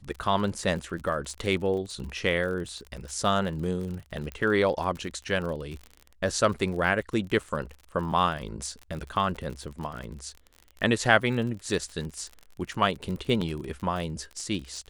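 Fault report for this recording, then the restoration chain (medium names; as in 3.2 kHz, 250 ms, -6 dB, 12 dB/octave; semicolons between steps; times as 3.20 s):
crackle 43 per s -34 dBFS
4.32 s: pop -21 dBFS
13.41–13.42 s: dropout 5.1 ms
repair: de-click; interpolate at 13.41 s, 5.1 ms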